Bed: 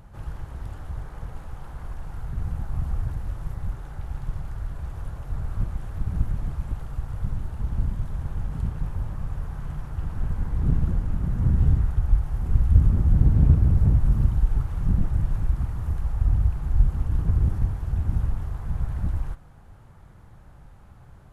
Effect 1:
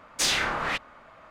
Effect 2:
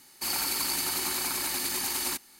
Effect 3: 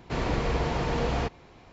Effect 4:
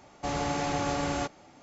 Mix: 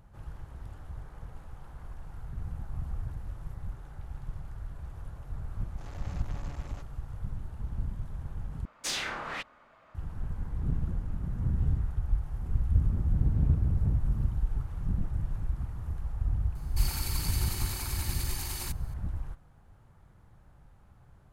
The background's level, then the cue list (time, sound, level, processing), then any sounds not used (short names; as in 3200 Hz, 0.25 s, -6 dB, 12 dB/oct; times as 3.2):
bed -8.5 dB
5.55 add 4 -15 dB + core saturation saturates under 1700 Hz
8.65 replace with 1 -8.5 dB
16.55 add 2 -8 dB
not used: 3